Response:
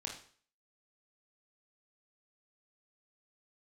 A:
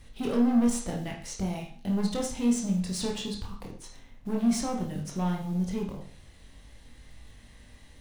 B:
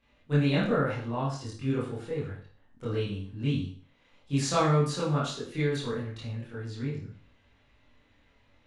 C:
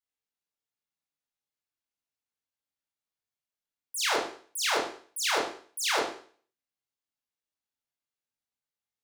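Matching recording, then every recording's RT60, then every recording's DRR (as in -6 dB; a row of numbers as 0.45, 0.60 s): A; 0.45, 0.45, 0.45 s; -0.5, -10.0, -5.0 dB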